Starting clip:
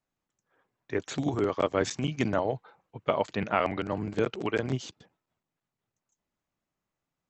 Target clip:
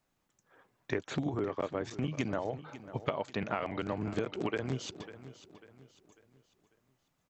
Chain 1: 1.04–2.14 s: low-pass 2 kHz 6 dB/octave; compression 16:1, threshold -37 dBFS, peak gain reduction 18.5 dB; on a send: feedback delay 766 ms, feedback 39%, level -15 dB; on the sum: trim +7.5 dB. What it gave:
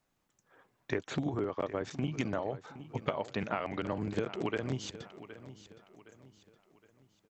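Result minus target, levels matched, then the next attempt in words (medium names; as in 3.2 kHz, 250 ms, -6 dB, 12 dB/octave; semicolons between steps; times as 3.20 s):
echo 220 ms late
1.04–2.14 s: low-pass 2 kHz 6 dB/octave; compression 16:1, threshold -37 dBFS, peak gain reduction 18.5 dB; on a send: feedback delay 546 ms, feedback 39%, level -15 dB; on the sum: trim +7.5 dB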